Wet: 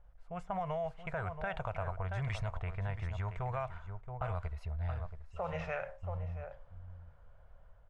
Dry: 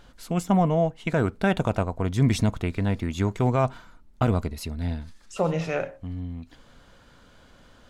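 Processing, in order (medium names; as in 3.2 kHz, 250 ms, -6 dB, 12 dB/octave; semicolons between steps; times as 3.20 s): level rider gain up to 6 dB; bit crusher 9-bit; fifteen-band graphic EQ 250 Hz -12 dB, 630 Hz +5 dB, 4 kHz -5 dB, 10 kHz +7 dB; on a send: delay 676 ms -12 dB; on the sum: peak limiter -12 dBFS, peak gain reduction 7 dB; level-controlled noise filter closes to 550 Hz, open at -8 dBFS; amplifier tone stack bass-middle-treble 10-0-10; compression 4:1, threshold -34 dBFS, peak gain reduction 6 dB; trim +1 dB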